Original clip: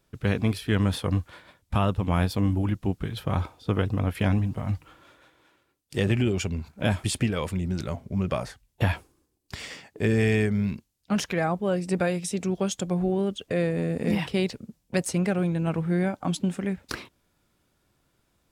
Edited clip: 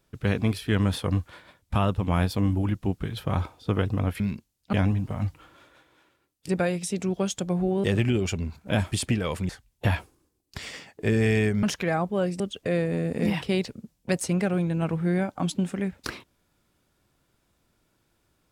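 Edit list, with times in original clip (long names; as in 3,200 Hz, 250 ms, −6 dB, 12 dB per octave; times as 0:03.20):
0:07.61–0:08.46: remove
0:10.60–0:11.13: move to 0:04.20
0:11.90–0:13.25: move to 0:05.96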